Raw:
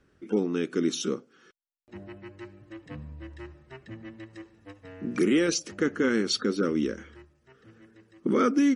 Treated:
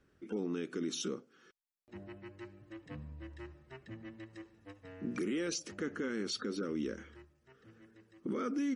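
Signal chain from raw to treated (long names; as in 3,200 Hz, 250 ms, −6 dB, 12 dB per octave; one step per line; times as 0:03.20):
brickwall limiter −22.5 dBFS, peak gain reduction 9.5 dB
level −5.5 dB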